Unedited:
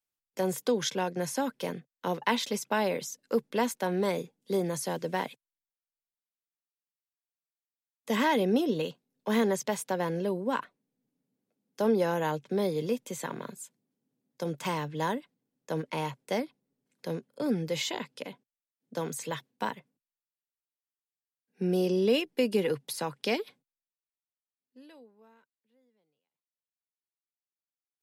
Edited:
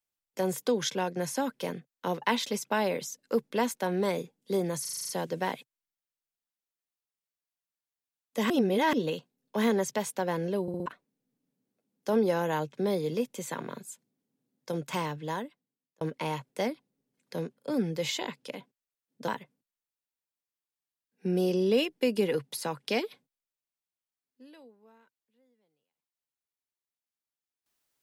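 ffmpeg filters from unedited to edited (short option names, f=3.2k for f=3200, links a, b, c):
-filter_complex "[0:a]asplit=16[a][b][c][d][e][f][g][h][i][j][k][l][m][n][o][p];[a]atrim=end=4.852[q];[b]atrim=start=4.808:end=4.852[r];[c]atrim=start=4.808:end=4.852[s];[d]atrim=start=4.808:end=4.852[t];[e]atrim=start=4.808:end=4.852[u];[f]atrim=start=4.808:end=4.852[v];[g]atrim=start=4.808:end=4.852[w];[h]atrim=start=4.808:end=8.222[x];[i]atrim=start=8.218:end=8.652,asetpts=PTS-STARTPTS,areverse[y];[j]atrim=start=8.648:end=10.402[z];[k]atrim=start=10.338:end=10.402[aa];[l]atrim=start=10.338:end=10.402[ab];[m]atrim=start=10.338:end=10.402[ac];[n]atrim=start=10.578:end=15.73,asetpts=PTS-STARTPTS,afade=t=out:st=4.132:d=1.02[ad];[o]atrim=start=15.73:end=19.002,asetpts=PTS-STARTPTS,afade=t=in:d=0.004:c=hsin[ae];[p]atrim=start=19.638[af];[q][r]acrossfade=d=0.004:c1=hsin:c2=hsin[ag];[ag][s]acrossfade=d=0.004:c1=hsin:c2=hsin[ah];[ah][t]acrossfade=d=0.004:c1=hsin:c2=hsin[ai];[ai][u]acrossfade=d=0.004:c1=hsin:c2=hsin[aj];[aj][v]acrossfade=d=0.004:c1=hsin:c2=hsin[ak];[ak][w]acrossfade=d=0.004:c1=hsin:c2=hsin[al];[al][x]acrossfade=d=0.004:c1=hsin:c2=hsin[am];[am][y]acrossfade=d=0.004:c1=hsin:c2=hsin[an];[an][z]acrossfade=d=0.004:c1=hsin:c2=hsin[ao];[ao][aa]acrossfade=d=0.004:c1=hsin:c2=hsin[ap];[ap][ab]acrossfade=d=0.004:c1=hsin:c2=hsin[aq];[aq][ac]acrossfade=d=0.004:c1=hsin:c2=hsin[ar];[ad][ae]concat=n=2:v=0:a=1[as];[ar][as]acrossfade=d=0.004:c1=hsin:c2=hsin[at];[at][af]acrossfade=d=0.004:c1=hsin:c2=hsin"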